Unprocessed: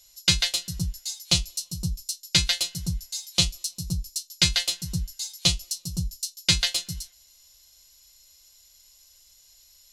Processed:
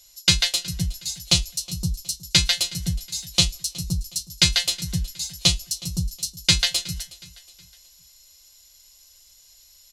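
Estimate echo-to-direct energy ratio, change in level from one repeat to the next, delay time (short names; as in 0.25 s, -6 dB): -19.5 dB, -7.5 dB, 0.367 s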